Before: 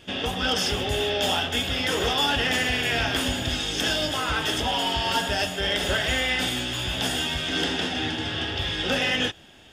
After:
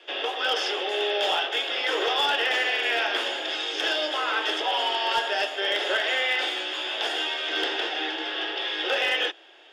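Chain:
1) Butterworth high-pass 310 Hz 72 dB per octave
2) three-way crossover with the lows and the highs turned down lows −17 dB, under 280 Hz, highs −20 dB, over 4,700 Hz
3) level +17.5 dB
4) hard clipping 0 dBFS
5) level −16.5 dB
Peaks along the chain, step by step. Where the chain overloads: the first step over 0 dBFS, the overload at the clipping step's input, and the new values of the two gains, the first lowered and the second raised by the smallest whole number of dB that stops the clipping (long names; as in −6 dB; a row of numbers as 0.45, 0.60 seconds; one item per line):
−11.5, −12.5, +5.0, 0.0, −16.5 dBFS
step 3, 5.0 dB
step 3 +12.5 dB, step 5 −11.5 dB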